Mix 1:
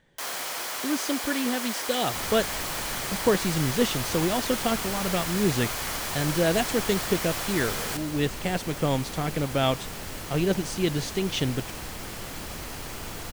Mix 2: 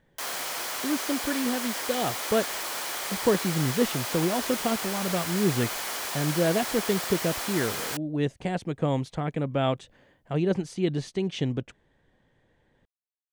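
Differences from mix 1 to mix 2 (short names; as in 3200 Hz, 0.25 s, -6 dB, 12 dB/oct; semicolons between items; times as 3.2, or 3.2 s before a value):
speech: add high shelf 2000 Hz -9.5 dB; second sound: muted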